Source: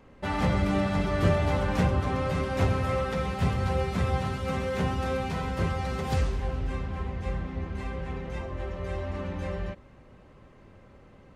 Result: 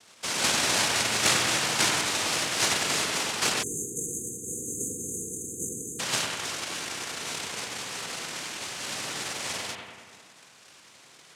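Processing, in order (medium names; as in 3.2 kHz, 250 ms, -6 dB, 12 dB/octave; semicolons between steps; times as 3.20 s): noise-vocoded speech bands 1; bucket-brigade echo 96 ms, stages 2048, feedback 66%, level -4.5 dB; spectral selection erased 3.63–6.00 s, 510–6200 Hz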